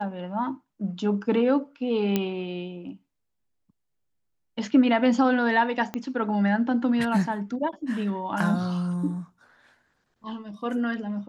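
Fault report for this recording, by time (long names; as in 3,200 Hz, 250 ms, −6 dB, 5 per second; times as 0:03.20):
0:02.16: click −10 dBFS
0:05.94: click −16 dBFS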